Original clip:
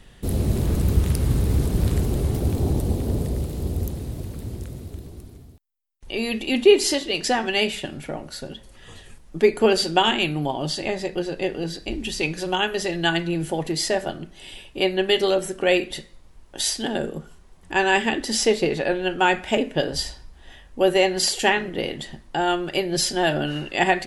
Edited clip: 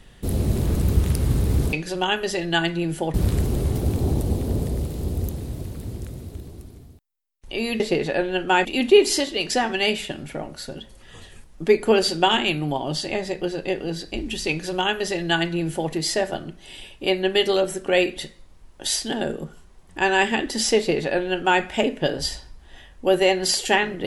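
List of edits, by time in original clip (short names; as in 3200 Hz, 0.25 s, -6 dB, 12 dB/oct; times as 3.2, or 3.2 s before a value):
12.24–13.65 copy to 1.73
18.51–19.36 copy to 6.39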